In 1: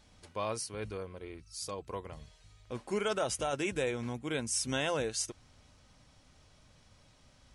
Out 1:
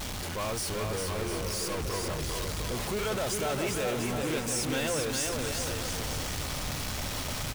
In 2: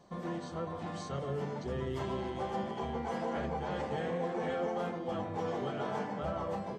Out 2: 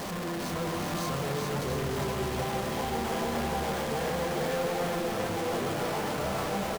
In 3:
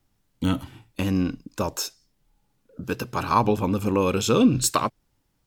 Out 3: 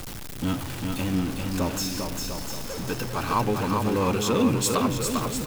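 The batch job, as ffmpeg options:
ffmpeg -i in.wav -af "aeval=exprs='val(0)+0.5*0.0631*sgn(val(0))':channel_layout=same,aecho=1:1:400|700|925|1094|1220:0.631|0.398|0.251|0.158|0.1,volume=-6dB" out.wav

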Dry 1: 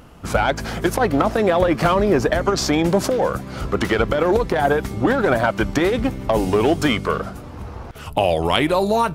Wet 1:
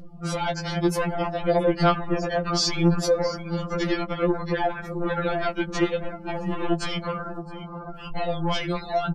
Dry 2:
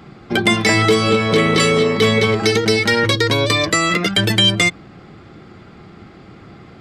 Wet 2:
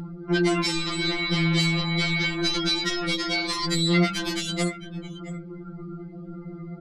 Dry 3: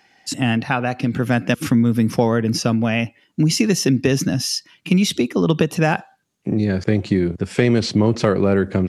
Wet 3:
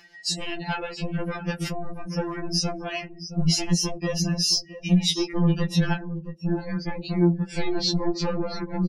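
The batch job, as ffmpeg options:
ffmpeg -i in.wav -af "aeval=exprs='0.398*(abs(mod(val(0)/0.398+3,4)-2)-1)':channel_layout=same,acompressor=threshold=-24dB:ratio=2,asoftclip=type=hard:threshold=-21.5dB,lowshelf=frequency=97:gain=8,aecho=1:1:669:0.251,afftdn=noise_reduction=30:noise_floor=-39,acompressor=mode=upward:threshold=-33dB:ratio=2.5,equalizer=frequency=4500:width=1.7:gain=6.5,afftfilt=real='re*2.83*eq(mod(b,8),0)':imag='im*2.83*eq(mod(b,8),0)':win_size=2048:overlap=0.75,volume=2dB" out.wav

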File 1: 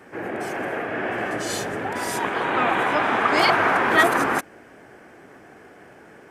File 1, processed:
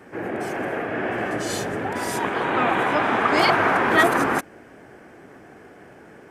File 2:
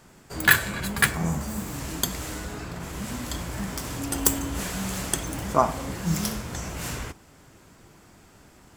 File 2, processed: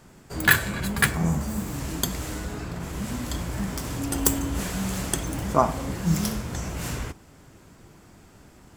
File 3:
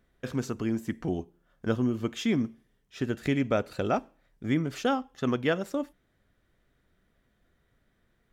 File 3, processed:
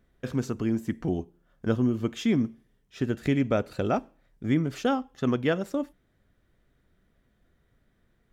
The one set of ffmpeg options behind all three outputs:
ffmpeg -i in.wav -af "lowshelf=frequency=470:gain=4.5,volume=-1dB" out.wav

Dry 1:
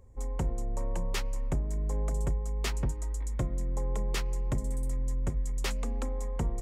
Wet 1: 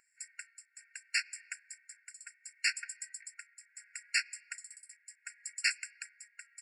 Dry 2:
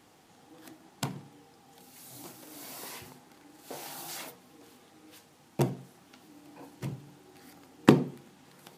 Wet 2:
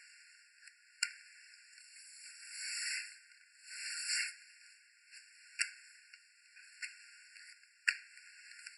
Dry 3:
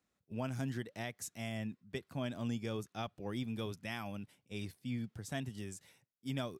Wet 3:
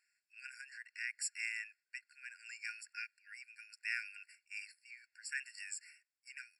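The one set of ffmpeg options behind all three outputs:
ffmpeg -i in.wav -af "tremolo=f=0.71:d=0.64,aresample=22050,aresample=44100,afftfilt=real='re*eq(mod(floor(b*sr/1024/1400),2),1)':imag='im*eq(mod(floor(b*sr/1024/1400),2),1)':win_size=1024:overlap=0.75,volume=9.5dB" out.wav

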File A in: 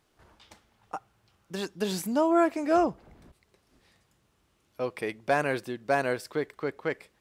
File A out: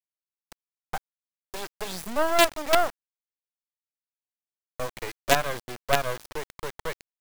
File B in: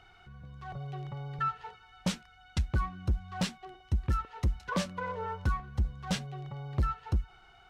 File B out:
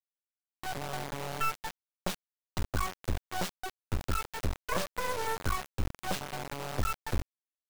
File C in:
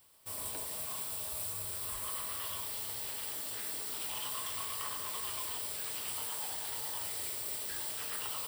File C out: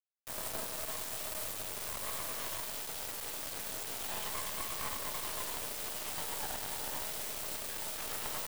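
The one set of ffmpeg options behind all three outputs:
ffmpeg -i in.wav -filter_complex "[0:a]equalizer=frequency=640:width=0.86:gain=12.5,acrossover=split=160|710|4700[link_01][link_02][link_03][link_04];[link_02]acompressor=threshold=-33dB:ratio=10[link_05];[link_01][link_05][link_03][link_04]amix=inputs=4:normalize=0,acrusher=bits=3:dc=4:mix=0:aa=0.000001" out.wav

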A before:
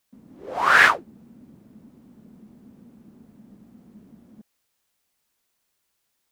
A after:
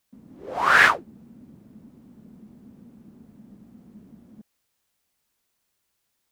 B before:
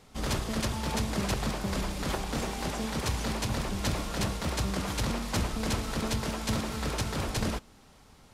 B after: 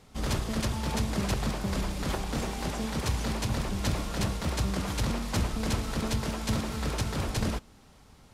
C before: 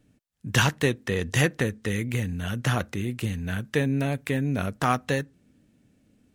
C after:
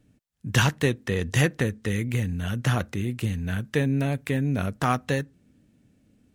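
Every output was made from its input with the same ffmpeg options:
ffmpeg -i in.wav -af "equalizer=frequency=70:width=0.33:gain=3.5,volume=-1dB" out.wav

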